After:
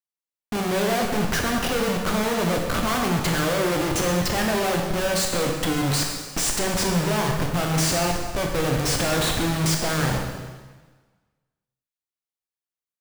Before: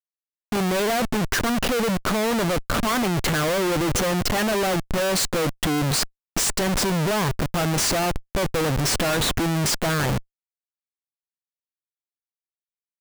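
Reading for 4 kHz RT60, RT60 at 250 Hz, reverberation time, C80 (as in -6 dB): 1.3 s, 1.4 s, 1.4 s, 5.0 dB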